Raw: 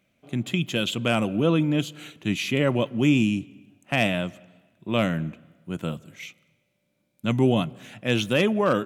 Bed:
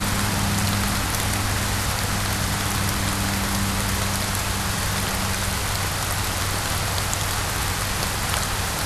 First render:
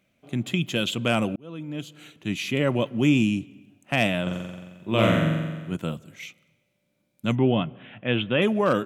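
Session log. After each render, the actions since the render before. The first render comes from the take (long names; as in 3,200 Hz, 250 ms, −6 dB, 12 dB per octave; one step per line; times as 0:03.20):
0:01.36–0:03.19: fade in equal-power
0:04.22–0:05.76: flutter between parallel walls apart 7.6 metres, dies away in 1.3 s
0:07.35–0:08.42: elliptic low-pass filter 3,300 Hz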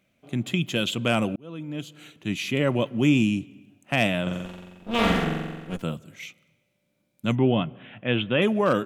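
0:04.45–0:05.83: lower of the sound and its delayed copy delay 4.3 ms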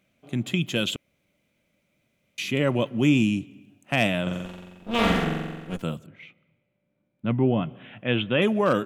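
0:00.96–0:02.38: fill with room tone
0:06.06–0:07.63: high-frequency loss of the air 490 metres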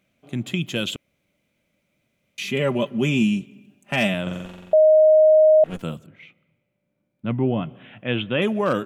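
0:02.41–0:04.14: comb filter 5 ms
0:04.73–0:05.64: beep over 623 Hz −10 dBFS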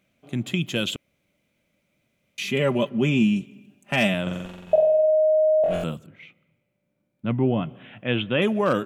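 0:02.89–0:03.36: high-shelf EQ 5,400 Hz −10 dB
0:04.65–0:05.84: flutter between parallel walls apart 4 metres, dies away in 0.99 s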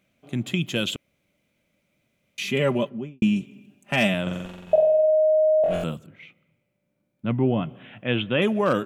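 0:02.68–0:03.22: fade out and dull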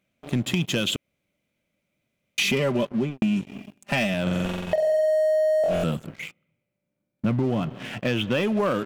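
downward compressor 12 to 1, threshold −30 dBFS, peak gain reduction 17 dB
leveller curve on the samples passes 3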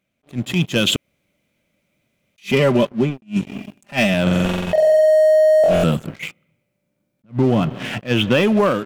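automatic gain control gain up to 8.5 dB
level that may rise only so fast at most 320 dB per second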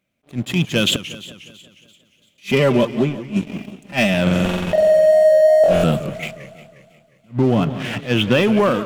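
delay with a high-pass on its return 338 ms, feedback 52%, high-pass 3,700 Hz, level −20.5 dB
feedback echo with a swinging delay time 179 ms, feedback 56%, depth 213 cents, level −14.5 dB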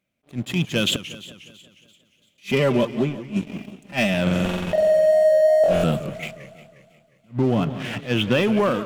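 level −4 dB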